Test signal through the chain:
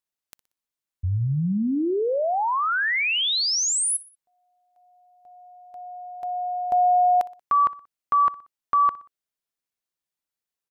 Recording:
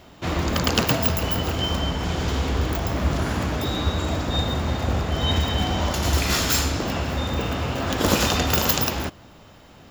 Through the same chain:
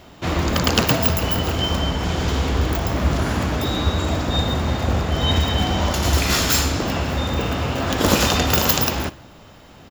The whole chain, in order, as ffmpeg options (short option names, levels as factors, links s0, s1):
-af "aecho=1:1:61|122|183:0.1|0.046|0.0212,volume=1.41"